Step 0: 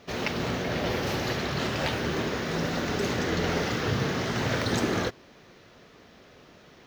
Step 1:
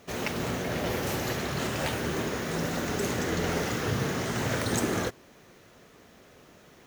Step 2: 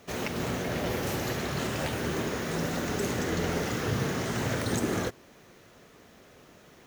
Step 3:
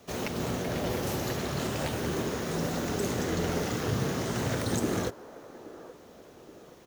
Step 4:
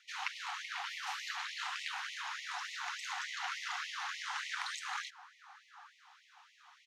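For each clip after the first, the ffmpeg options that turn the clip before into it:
-af "highshelf=f=6400:t=q:w=1.5:g=9.5,volume=0.841"
-filter_complex "[0:a]acrossover=split=500[s0][s1];[s1]acompressor=threshold=0.0282:ratio=6[s2];[s0][s2]amix=inputs=2:normalize=0"
-filter_complex "[0:a]acrossover=split=290|1700|2300[s0][s1][s2][s3];[s1]asplit=2[s4][s5];[s5]adelay=824,lowpass=f=1100:p=1,volume=0.251,asplit=2[s6][s7];[s7]adelay=824,lowpass=f=1100:p=1,volume=0.54,asplit=2[s8][s9];[s9]adelay=824,lowpass=f=1100:p=1,volume=0.54,asplit=2[s10][s11];[s11]adelay=824,lowpass=f=1100:p=1,volume=0.54,asplit=2[s12][s13];[s13]adelay=824,lowpass=f=1100:p=1,volume=0.54,asplit=2[s14][s15];[s15]adelay=824,lowpass=f=1100:p=1,volume=0.54[s16];[s4][s6][s8][s10][s12][s14][s16]amix=inputs=7:normalize=0[s17];[s2]acrusher=bits=4:dc=4:mix=0:aa=0.000001[s18];[s0][s17][s18][s3]amix=inputs=4:normalize=0"
-af "highpass=550,lowpass=3900,afftfilt=real='re*gte(b*sr/1024,700*pow(1900/700,0.5+0.5*sin(2*PI*3.4*pts/sr)))':imag='im*gte(b*sr/1024,700*pow(1900/700,0.5+0.5*sin(2*PI*3.4*pts/sr)))':win_size=1024:overlap=0.75,volume=1.12"

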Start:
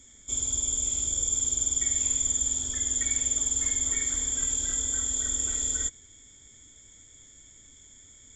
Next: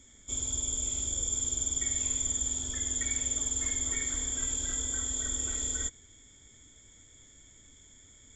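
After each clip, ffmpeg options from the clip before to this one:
-af "highshelf=f=4600:g=-6.5"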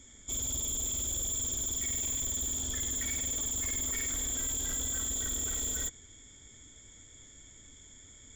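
-af "asoftclip=type=hard:threshold=0.0211,volume=1.33"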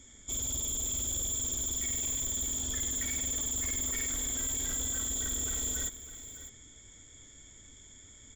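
-af "aecho=1:1:605:0.211"

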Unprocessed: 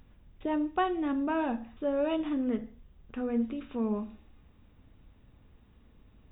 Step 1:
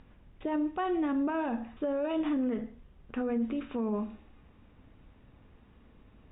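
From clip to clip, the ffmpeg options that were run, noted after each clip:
-af "lowpass=3100,lowshelf=f=150:g=-6,alimiter=level_in=1.78:limit=0.0631:level=0:latency=1:release=38,volume=0.562,volume=1.78"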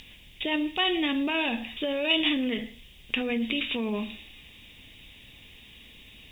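-af "aexciter=amount=12.7:drive=8.1:freq=2200,volume=1.19"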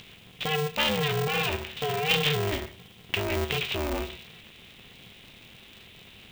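-af "aeval=exprs='val(0)*sgn(sin(2*PI*150*n/s))':c=same"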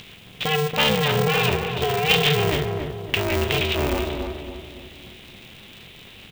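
-filter_complex "[0:a]asplit=2[s0][s1];[s1]adelay=280,lowpass=f=1100:p=1,volume=0.631,asplit=2[s2][s3];[s3]adelay=280,lowpass=f=1100:p=1,volume=0.48,asplit=2[s4][s5];[s5]adelay=280,lowpass=f=1100:p=1,volume=0.48,asplit=2[s6][s7];[s7]adelay=280,lowpass=f=1100:p=1,volume=0.48,asplit=2[s8][s9];[s9]adelay=280,lowpass=f=1100:p=1,volume=0.48,asplit=2[s10][s11];[s11]adelay=280,lowpass=f=1100:p=1,volume=0.48[s12];[s0][s2][s4][s6][s8][s10][s12]amix=inputs=7:normalize=0,volume=1.88"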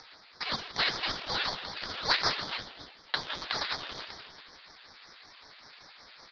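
-af "asuperpass=centerf=2500:order=12:qfactor=0.88,flanger=delay=2.2:depth=6.5:regen=37:speed=1.7:shape=sinusoidal,aeval=exprs='val(0)*sin(2*PI*1400*n/s+1400*0.35/5.3*sin(2*PI*5.3*n/s))':c=same"

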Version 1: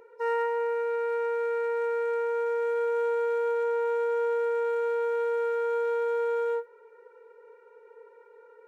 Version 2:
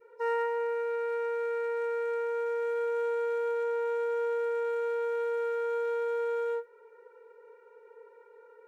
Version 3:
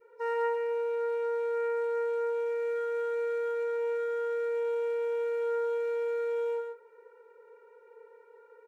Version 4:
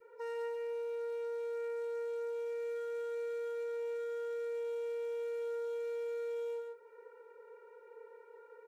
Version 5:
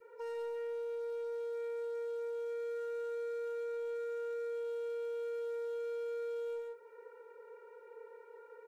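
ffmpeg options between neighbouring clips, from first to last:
-af "adynamicequalizer=threshold=0.00794:dfrequency=770:dqfactor=1.1:tfrequency=770:tqfactor=1.1:attack=5:release=100:ratio=0.375:range=2:mode=cutabove:tftype=bell,volume=0.841"
-af "aecho=1:1:135:0.531,volume=0.794"
-filter_complex "[0:a]acrossover=split=360|3000[s0][s1][s2];[s1]acompressor=threshold=0.00447:ratio=5[s3];[s0][s3][s2]amix=inputs=3:normalize=0"
-af "asoftclip=type=tanh:threshold=0.0158,volume=1.19"

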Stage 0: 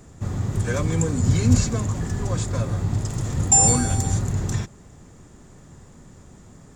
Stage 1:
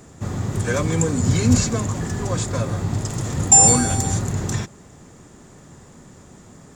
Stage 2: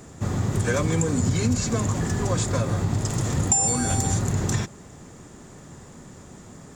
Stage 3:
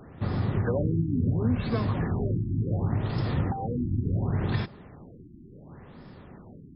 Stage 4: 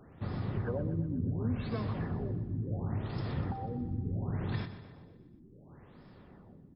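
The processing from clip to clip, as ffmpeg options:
-af "lowshelf=f=89:g=-11.5,volume=1.68"
-af "acompressor=threshold=0.112:ratio=12,volume=1.12"
-af "afftfilt=real='re*lt(b*sr/1024,350*pow(5400/350,0.5+0.5*sin(2*PI*0.7*pts/sr)))':imag='im*lt(b*sr/1024,350*pow(5400/350,0.5+0.5*sin(2*PI*0.7*pts/sr)))':win_size=1024:overlap=0.75,volume=0.75"
-af "aecho=1:1:123|246|369|492|615|738:0.251|0.136|0.0732|0.0396|0.0214|0.0115,volume=0.398"

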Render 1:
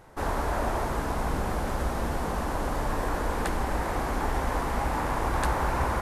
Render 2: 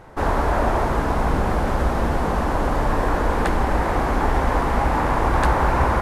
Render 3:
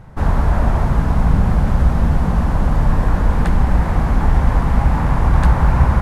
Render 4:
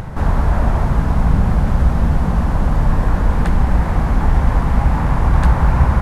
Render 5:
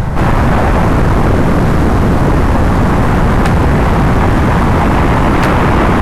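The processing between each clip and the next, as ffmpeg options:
-af "highshelf=f=5000:g=-11,volume=2.66"
-af "lowshelf=f=240:t=q:w=1.5:g=10.5,volume=0.75"
-af "acompressor=mode=upward:threshold=0.158:ratio=2.5"
-af "aeval=exprs='0.891*sin(PI/2*5.62*val(0)/0.891)':c=same,volume=0.562"

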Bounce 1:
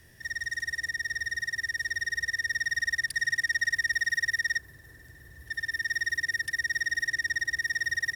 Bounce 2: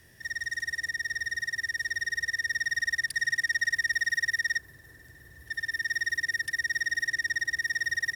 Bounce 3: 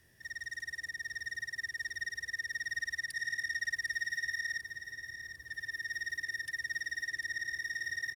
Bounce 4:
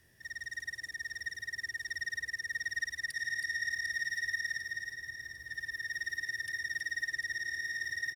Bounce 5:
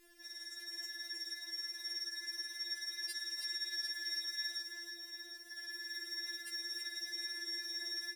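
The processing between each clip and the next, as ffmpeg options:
-af "lowshelf=f=79:g=-6"
-af "aecho=1:1:749|1498|2247|2996|3745:0.355|0.17|0.0817|0.0392|0.0188,volume=0.376"
-af "aecho=1:1:322:0.501"
-af "afftfilt=real='re*4*eq(mod(b,16),0)':imag='im*4*eq(mod(b,16),0)':win_size=2048:overlap=0.75,volume=2"

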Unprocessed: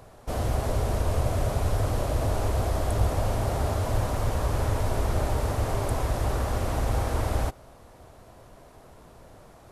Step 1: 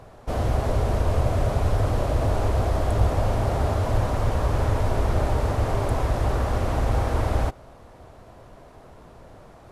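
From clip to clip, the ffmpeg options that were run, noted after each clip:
-af "lowpass=f=3700:p=1,volume=1.5"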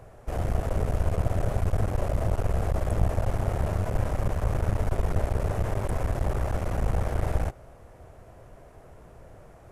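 -af "equalizer=f=250:t=o:w=1:g=-6,equalizer=f=1000:t=o:w=1:g=-6,equalizer=f=4000:t=o:w=1:g=-10,aeval=exprs='clip(val(0),-1,0.0251)':c=same"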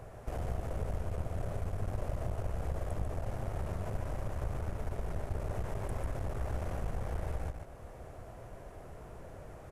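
-filter_complex "[0:a]acompressor=threshold=0.0158:ratio=3,asplit=2[s0][s1];[s1]aecho=0:1:145:0.531[s2];[s0][s2]amix=inputs=2:normalize=0"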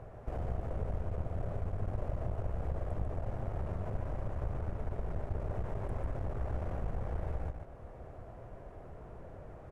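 -af "lowpass=f=1400:p=1"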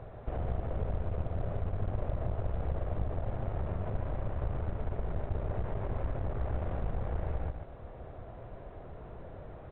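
-af "volume=1.33" -ar 8000 -c:a pcm_alaw

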